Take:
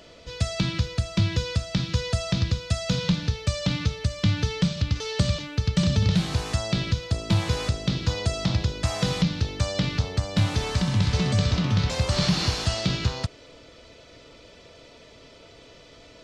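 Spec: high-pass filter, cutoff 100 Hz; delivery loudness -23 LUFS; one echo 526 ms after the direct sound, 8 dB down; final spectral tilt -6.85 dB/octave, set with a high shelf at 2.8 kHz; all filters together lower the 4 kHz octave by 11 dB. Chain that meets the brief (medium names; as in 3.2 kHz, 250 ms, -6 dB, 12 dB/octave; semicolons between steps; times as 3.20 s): high-pass 100 Hz; treble shelf 2.8 kHz -6.5 dB; peaking EQ 4 kHz -8.5 dB; delay 526 ms -8 dB; trim +4.5 dB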